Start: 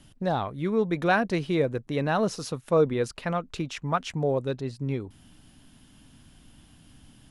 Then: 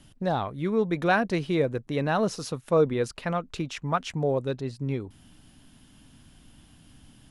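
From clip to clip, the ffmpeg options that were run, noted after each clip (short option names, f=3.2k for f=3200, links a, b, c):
-af anull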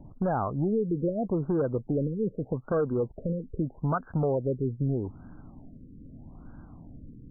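-af "acompressor=threshold=-30dB:ratio=4,aeval=exprs='0.0891*sin(PI/2*1.58*val(0)/0.0891)':c=same,afftfilt=real='re*lt(b*sr/1024,510*pow(1700/510,0.5+0.5*sin(2*PI*0.8*pts/sr)))':imag='im*lt(b*sr/1024,510*pow(1700/510,0.5+0.5*sin(2*PI*0.8*pts/sr)))':win_size=1024:overlap=0.75"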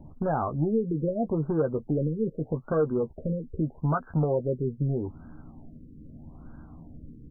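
-filter_complex "[0:a]asplit=2[a][b];[b]adelay=13,volume=-7dB[c];[a][c]amix=inputs=2:normalize=0"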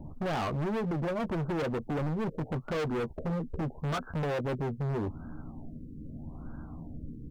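-af "asoftclip=type=hard:threshold=-33dB,volume=3.5dB"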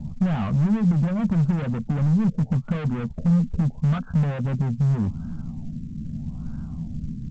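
-af "lowpass=f=3.3k:w=0.5412,lowpass=f=3.3k:w=1.3066,lowshelf=f=260:t=q:w=3:g=9" -ar 16000 -c:a pcm_mulaw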